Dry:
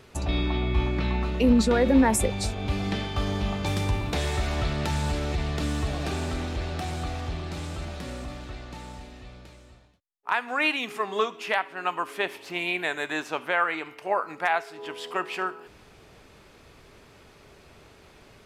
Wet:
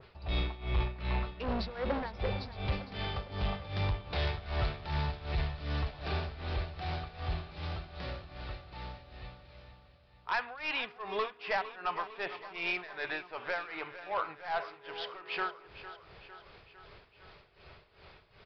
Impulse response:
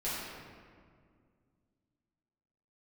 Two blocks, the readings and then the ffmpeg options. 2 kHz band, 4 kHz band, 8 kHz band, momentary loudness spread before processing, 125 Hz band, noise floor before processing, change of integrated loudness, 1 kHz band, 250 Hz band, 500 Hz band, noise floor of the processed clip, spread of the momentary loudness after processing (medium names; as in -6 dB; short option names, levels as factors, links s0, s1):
-8.0 dB, -7.0 dB, under -30 dB, 15 LU, -7.0 dB, -53 dBFS, -9.0 dB, -8.0 dB, -16.0 dB, -10.0 dB, -61 dBFS, 15 LU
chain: -af "aresample=11025,asoftclip=type=tanh:threshold=0.0708,aresample=44100,tremolo=f=2.6:d=0.87,equalizer=f=260:w=1.7:g=-11.5,aecho=1:1:455|910|1365|1820|2275|2730:0.2|0.118|0.0695|0.041|0.0242|0.0143,adynamicequalizer=threshold=0.00501:dfrequency=1800:dqfactor=0.7:tfrequency=1800:tqfactor=0.7:attack=5:release=100:ratio=0.375:range=2:mode=cutabove:tftype=highshelf"